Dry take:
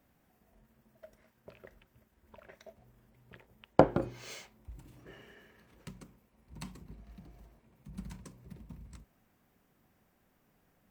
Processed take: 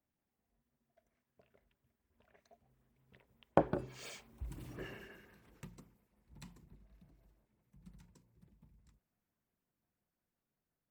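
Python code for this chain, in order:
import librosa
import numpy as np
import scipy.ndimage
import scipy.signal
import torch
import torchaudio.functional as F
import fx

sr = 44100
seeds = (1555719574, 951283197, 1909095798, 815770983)

y = fx.doppler_pass(x, sr, speed_mps=20, closest_m=4.9, pass_at_s=4.73)
y = fx.filter_lfo_notch(y, sr, shape='sine', hz=5.7, low_hz=570.0, high_hz=6900.0, q=2.0)
y = y * 10.0 ** (7.5 / 20.0)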